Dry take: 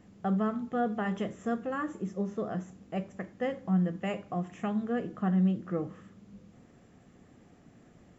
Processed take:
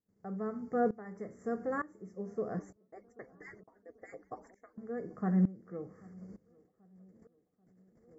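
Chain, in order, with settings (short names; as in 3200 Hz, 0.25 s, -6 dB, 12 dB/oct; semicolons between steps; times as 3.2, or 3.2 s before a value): 2.59–4.78 median-filter separation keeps percussive; gate -54 dBFS, range -18 dB; Chebyshev band-stop 2200–4500 Hz, order 5; bell 440 Hz +8 dB 0.37 oct; tape echo 0.786 s, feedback 71%, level -20 dB, low-pass 1000 Hz; dB-ramp tremolo swelling 1.1 Hz, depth 19 dB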